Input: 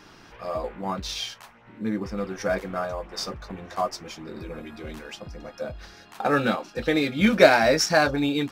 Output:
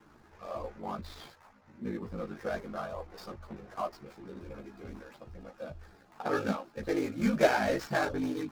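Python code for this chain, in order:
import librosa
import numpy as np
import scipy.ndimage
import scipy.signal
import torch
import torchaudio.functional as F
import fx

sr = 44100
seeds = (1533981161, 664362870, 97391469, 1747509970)

y = scipy.signal.medfilt(x, 15)
y = y * np.sin(2.0 * np.pi * 26.0 * np.arange(len(y)) / sr)
y = fx.ensemble(y, sr)
y = y * librosa.db_to_amplitude(-2.0)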